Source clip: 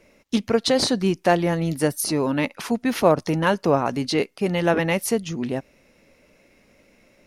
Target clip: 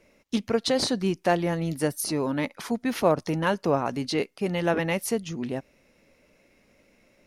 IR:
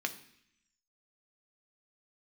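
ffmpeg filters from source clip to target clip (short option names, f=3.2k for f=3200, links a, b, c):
-filter_complex "[0:a]asettb=1/sr,asplit=3[a][b][c];[a]atrim=end=2.244[d];[b]atrim=start=2.24:end=2.85,asetpts=PTS-STARTPTS,afade=t=in:d=0.004:c=qsin,afade=t=out:st=0.606:d=0.004:c=qsin,bandreject=f=2.7k:w=8.8[e];[c]atrim=start=2.846[f];[d][e]acrossfade=d=0.004:c1=hsin:c2=qsin[g];[g][f]acrossfade=d=0.004:c1=qsin:c2=hsin,volume=-4.5dB"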